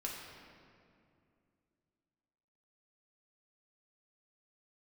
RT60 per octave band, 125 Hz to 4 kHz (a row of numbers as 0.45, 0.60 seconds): 3.1, 3.1, 2.7, 2.3, 2.0, 1.5 seconds